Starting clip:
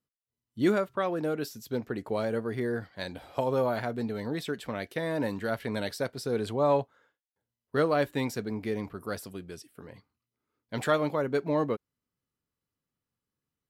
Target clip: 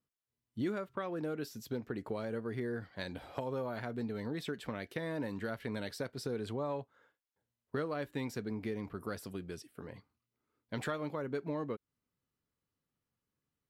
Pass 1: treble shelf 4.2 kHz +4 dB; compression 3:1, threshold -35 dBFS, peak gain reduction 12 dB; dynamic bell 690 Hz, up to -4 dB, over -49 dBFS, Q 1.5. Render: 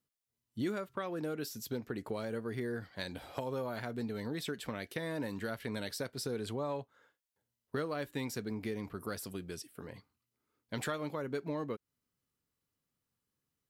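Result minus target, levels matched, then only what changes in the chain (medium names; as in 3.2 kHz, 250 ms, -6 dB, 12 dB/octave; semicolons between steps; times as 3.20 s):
8 kHz band +6.5 dB
change: treble shelf 4.2 kHz -5.5 dB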